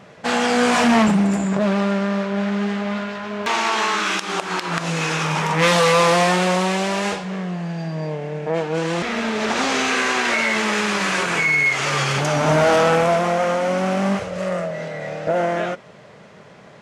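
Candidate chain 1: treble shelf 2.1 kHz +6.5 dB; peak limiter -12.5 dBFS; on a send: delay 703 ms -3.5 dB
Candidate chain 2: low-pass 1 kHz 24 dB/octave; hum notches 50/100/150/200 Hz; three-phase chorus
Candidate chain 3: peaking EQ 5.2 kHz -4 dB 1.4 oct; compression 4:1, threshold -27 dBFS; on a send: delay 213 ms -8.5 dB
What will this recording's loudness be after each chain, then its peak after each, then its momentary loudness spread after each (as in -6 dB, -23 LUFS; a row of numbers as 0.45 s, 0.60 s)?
-19.5 LUFS, -26.0 LUFS, -28.0 LUFS; -8.0 dBFS, -10.0 dBFS, -15.5 dBFS; 7 LU, 11 LU, 4 LU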